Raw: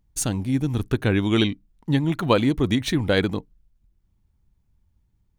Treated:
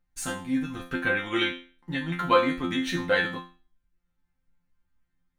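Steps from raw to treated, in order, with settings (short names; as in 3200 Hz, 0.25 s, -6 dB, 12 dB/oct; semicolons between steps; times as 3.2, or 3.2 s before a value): bell 1600 Hz +12.5 dB 1.5 oct; resonator bank F3 fifth, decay 0.39 s; gain +8 dB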